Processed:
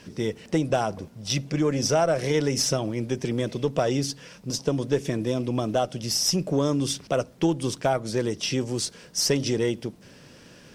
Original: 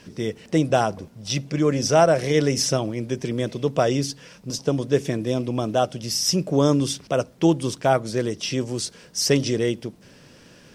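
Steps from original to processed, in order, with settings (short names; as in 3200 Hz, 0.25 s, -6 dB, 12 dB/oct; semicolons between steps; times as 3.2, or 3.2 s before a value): compressor 2.5:1, threshold -20 dBFS, peak gain reduction 6.5 dB; added harmonics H 4 -26 dB, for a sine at -9 dBFS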